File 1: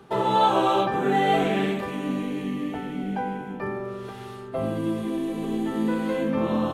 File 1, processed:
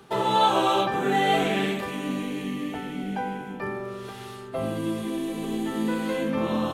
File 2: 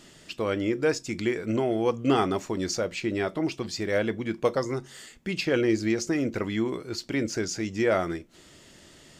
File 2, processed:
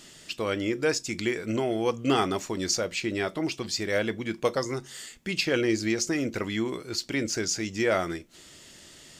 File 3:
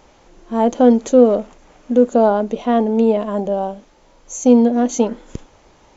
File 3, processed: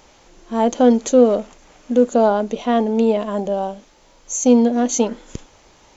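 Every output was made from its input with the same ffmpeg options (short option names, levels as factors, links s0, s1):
-af "highshelf=f=2100:g=8,volume=0.794"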